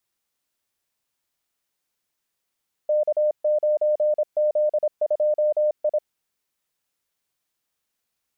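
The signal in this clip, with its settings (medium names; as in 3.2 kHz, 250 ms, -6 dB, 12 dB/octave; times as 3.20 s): Morse "K9Z2I" 26 wpm 604 Hz -17 dBFS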